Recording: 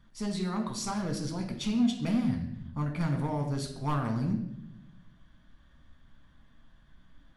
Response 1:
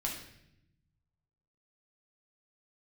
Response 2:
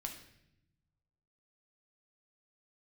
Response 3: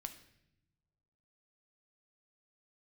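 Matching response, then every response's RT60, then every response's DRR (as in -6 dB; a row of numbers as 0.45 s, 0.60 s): 2; 0.75 s, 0.80 s, no single decay rate; -2.0 dB, 2.5 dB, 7.0 dB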